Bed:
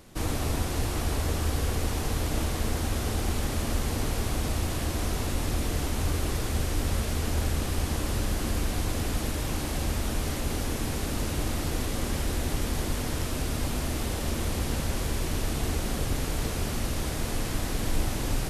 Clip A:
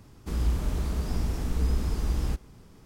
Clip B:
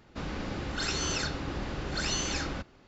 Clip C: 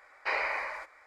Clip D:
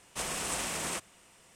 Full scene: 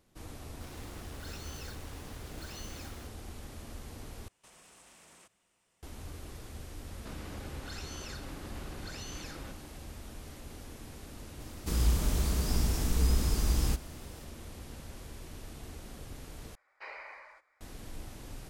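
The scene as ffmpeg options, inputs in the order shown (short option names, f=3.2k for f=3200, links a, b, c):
-filter_complex "[2:a]asplit=2[a][b];[0:a]volume=-17dB[c];[a]acrusher=bits=5:mix=0:aa=0.000001[d];[4:a]acompressor=threshold=-39dB:ratio=6:attack=3.2:release=140:knee=1:detection=peak[e];[b]acompressor=threshold=-42dB:ratio=6:attack=3.2:release=140:knee=1:detection=peak[f];[1:a]highshelf=f=3.4k:g=11.5[g];[c]asplit=3[h][i][j];[h]atrim=end=4.284[k];[e]atrim=end=1.55,asetpts=PTS-STARTPTS,volume=-15.5dB[l];[i]atrim=start=5.826:end=16.554[m];[3:a]atrim=end=1.06,asetpts=PTS-STARTPTS,volume=-15dB[n];[j]atrim=start=17.606[o];[d]atrim=end=2.87,asetpts=PTS-STARTPTS,volume=-16.5dB,afade=t=in:d=0.004:c=hsin,afade=t=out:st=2.866:d=0.004:c=hsin,adelay=450[p];[f]atrim=end=2.87,asetpts=PTS-STARTPTS,afade=t=in:d=0.004:c=hsin,afade=t=out:st=2.866:d=0.004:c=hsin,adelay=304290S[q];[g]atrim=end=2.85,asetpts=PTS-STARTPTS,volume=-1dB,afade=t=in:d=0.004:c=hsin,afade=t=out:st=2.846:d=0.004:c=hsin,adelay=11400[r];[k][l]acrossfade=d=0.004:c1=hsin:c2=hsin[s];[s][m]acrossfade=d=0.004:c1=hsin:c2=hsin[t];[t][n]acrossfade=d=0.004:c1=hsin:c2=hsin[u];[u][o]acrossfade=d=0.004:c1=hsin:c2=hsin[v];[v][p][q][r]amix=inputs=4:normalize=0"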